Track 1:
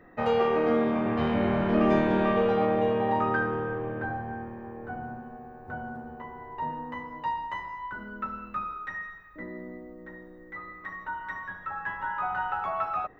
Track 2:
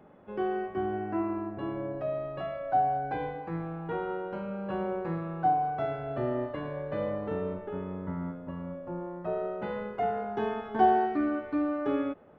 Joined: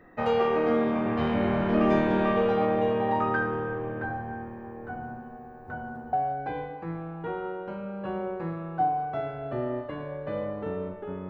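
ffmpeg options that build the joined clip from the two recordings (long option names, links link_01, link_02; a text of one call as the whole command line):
ffmpeg -i cue0.wav -i cue1.wav -filter_complex "[0:a]apad=whole_dur=11.29,atrim=end=11.29,atrim=end=6.132[link_01];[1:a]atrim=start=2.778:end=7.94[link_02];[link_01][link_02]acrossfade=duration=0.004:curve1=hsin:curve2=hsin" out.wav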